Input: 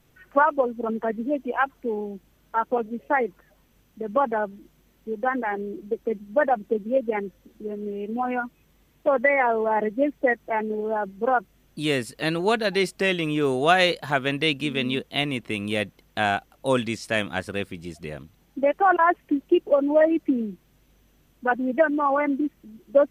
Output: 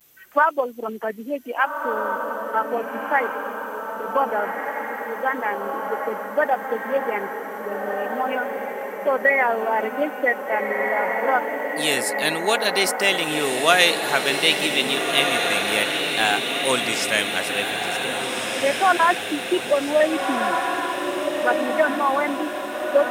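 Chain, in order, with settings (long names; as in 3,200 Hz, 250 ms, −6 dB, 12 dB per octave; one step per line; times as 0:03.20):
pitch vibrato 0.63 Hz 51 cents
RIAA equalisation recording
feedback delay with all-pass diffusion 1,645 ms, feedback 57%, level −3.5 dB
level +1.5 dB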